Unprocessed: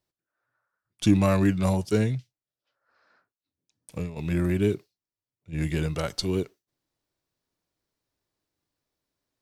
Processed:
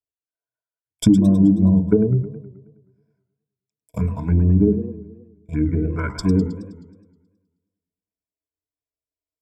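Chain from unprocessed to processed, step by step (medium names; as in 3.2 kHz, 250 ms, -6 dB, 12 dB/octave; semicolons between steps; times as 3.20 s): transient shaper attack +4 dB, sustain -5 dB; gate -45 dBFS, range -22 dB; peaking EQ 3.9 kHz -14 dB 0.87 oct; de-hum 67.45 Hz, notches 16; small resonant body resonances 240/1000 Hz, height 9 dB, ringing for 85 ms; touch-sensitive phaser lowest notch 210 Hz, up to 2.1 kHz, full sweep at -17.5 dBFS; low-pass that closes with the level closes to 400 Hz, closed at -21 dBFS; rippled EQ curve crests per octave 1.7, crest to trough 16 dB; compression 4:1, threshold -18 dBFS, peak gain reduction 9.5 dB; modulated delay 106 ms, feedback 58%, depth 199 cents, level -13 dB; trim +7 dB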